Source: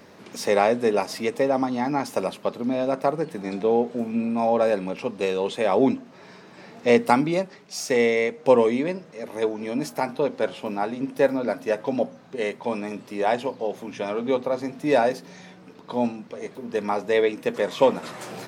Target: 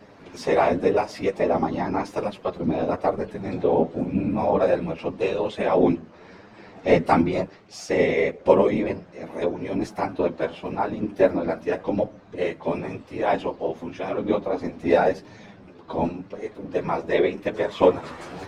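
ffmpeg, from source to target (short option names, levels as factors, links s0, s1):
-af "afftfilt=real='hypot(re,im)*cos(2*PI*random(0))':imag='hypot(re,im)*sin(2*PI*random(1))':win_size=512:overlap=0.75,aemphasis=mode=reproduction:type=50fm,flanger=delay=9.2:depth=3.3:regen=-7:speed=0.91:shape=triangular,volume=2.82"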